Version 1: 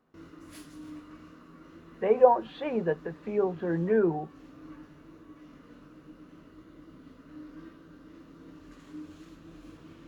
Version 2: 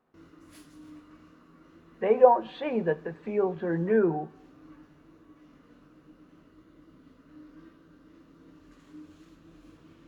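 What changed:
speech: send +10.5 dB
background −4.5 dB

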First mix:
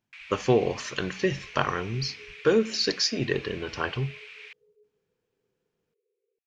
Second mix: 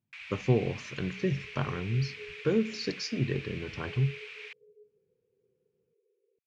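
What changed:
speech −12.0 dB
master: add parametric band 130 Hz +15 dB 2.6 octaves

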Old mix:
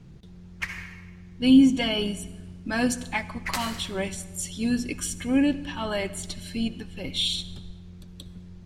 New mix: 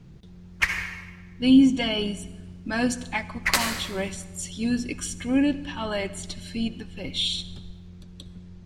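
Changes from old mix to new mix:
speech: add low-pass filter 9,100 Hz 12 dB per octave
background +9.0 dB

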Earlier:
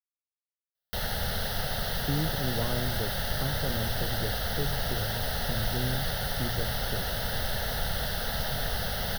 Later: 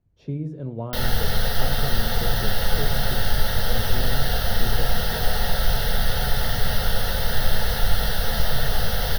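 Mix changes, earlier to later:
speech: entry −1.80 s
reverb: on, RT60 0.35 s

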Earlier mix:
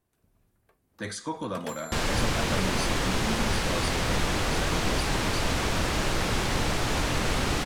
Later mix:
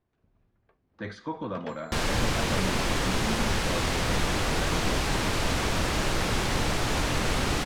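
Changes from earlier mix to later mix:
speech: add high-frequency loss of the air 290 metres
first sound: add high-frequency loss of the air 220 metres

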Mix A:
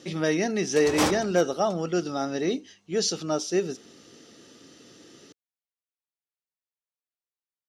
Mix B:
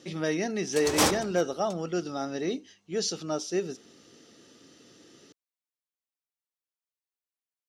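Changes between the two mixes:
speech −4.0 dB
background: add high-shelf EQ 5,100 Hz +7.5 dB

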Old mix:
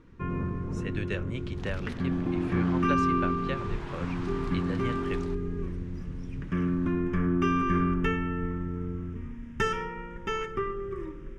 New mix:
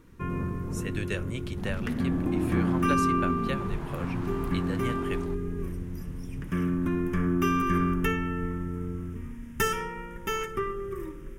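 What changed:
second sound: add spectral tilt −4.5 dB per octave
master: remove high-frequency loss of the air 130 metres

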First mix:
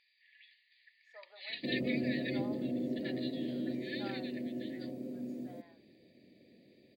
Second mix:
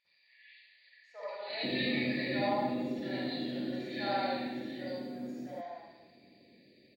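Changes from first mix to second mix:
speech +4.5 dB
first sound −9.5 dB
reverb: on

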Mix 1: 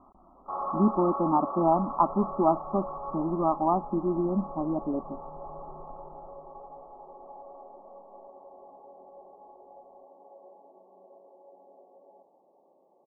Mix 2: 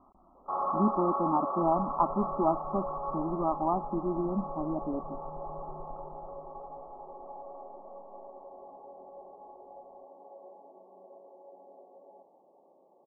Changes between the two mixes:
speech −4.0 dB
reverb: on, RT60 0.65 s

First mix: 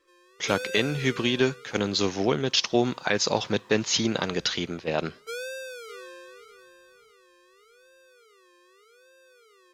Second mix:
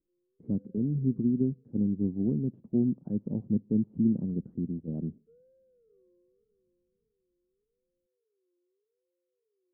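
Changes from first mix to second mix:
speech +7.0 dB
master: add transistor ladder low-pass 270 Hz, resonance 45%

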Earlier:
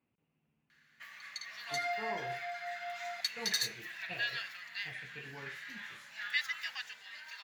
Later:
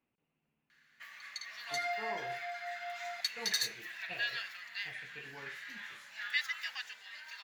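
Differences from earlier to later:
speech: remove high-pass filter 78 Hz
master: add low-shelf EQ 170 Hz −11 dB

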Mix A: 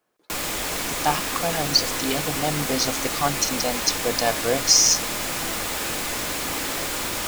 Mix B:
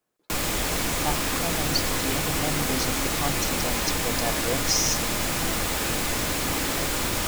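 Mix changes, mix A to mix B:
speech −8.5 dB
master: add low-shelf EQ 220 Hz +9 dB

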